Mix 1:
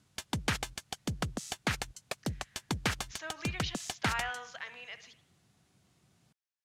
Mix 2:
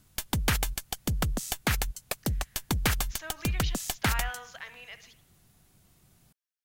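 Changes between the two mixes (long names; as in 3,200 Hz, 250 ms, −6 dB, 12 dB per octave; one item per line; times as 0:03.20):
background +3.5 dB
master: remove band-pass filter 100–7,300 Hz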